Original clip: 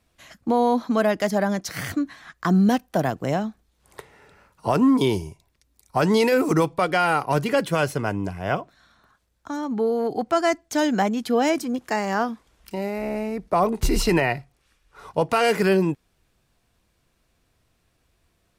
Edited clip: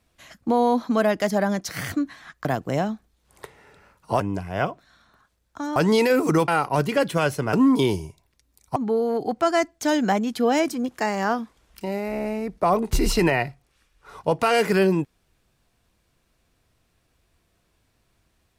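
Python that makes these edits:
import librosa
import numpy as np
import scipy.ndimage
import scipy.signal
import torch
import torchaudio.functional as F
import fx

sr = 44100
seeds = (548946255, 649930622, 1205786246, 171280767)

y = fx.edit(x, sr, fx.cut(start_s=2.45, length_s=0.55),
    fx.swap(start_s=4.75, length_s=1.23, other_s=8.1, other_length_s=1.56),
    fx.cut(start_s=6.7, length_s=0.35), tone=tone)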